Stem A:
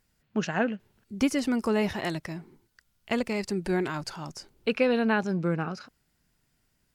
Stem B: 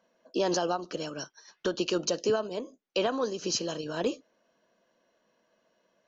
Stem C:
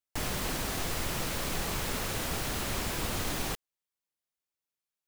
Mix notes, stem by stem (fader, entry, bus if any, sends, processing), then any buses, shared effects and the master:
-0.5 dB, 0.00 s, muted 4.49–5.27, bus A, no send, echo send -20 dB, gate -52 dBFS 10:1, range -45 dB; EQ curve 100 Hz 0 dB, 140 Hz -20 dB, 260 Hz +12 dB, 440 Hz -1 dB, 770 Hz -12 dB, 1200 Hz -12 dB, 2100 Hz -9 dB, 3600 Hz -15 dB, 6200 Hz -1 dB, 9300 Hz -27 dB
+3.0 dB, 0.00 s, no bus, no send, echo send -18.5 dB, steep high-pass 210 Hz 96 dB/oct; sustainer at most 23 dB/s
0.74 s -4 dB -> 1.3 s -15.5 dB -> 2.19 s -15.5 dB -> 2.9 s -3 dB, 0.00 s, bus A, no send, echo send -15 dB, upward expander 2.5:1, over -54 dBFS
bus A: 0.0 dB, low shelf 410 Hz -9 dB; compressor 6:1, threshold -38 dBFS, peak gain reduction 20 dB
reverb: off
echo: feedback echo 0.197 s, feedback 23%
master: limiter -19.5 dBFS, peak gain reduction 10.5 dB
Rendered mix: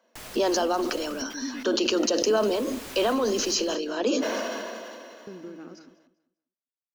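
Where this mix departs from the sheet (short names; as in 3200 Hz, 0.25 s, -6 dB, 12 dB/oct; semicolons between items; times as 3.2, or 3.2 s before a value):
stem C: missing upward expander 2.5:1, over -54 dBFS; master: missing limiter -19.5 dBFS, peak gain reduction 10.5 dB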